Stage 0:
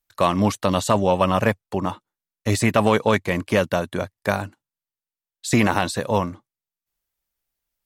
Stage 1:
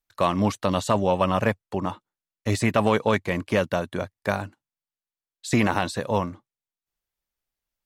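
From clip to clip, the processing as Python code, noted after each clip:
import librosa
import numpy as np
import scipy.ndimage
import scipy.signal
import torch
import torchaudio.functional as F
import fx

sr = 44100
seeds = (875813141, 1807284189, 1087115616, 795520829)

y = fx.high_shelf(x, sr, hz=8000.0, db=-6.5)
y = y * 10.0 ** (-3.0 / 20.0)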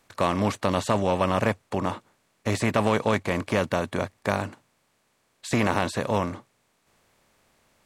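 y = fx.bin_compress(x, sr, power=0.6)
y = y * 10.0 ** (-4.5 / 20.0)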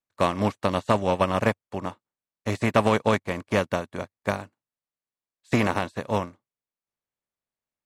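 y = fx.upward_expand(x, sr, threshold_db=-43.0, expansion=2.5)
y = y * 10.0 ** (5.0 / 20.0)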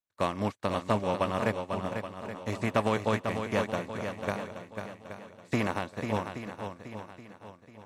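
y = fx.echo_swing(x, sr, ms=825, ratio=1.5, feedback_pct=33, wet_db=-7.0)
y = y * 10.0 ** (-6.5 / 20.0)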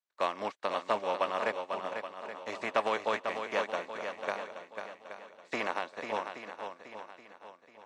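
y = fx.bandpass_edges(x, sr, low_hz=500.0, high_hz=5700.0)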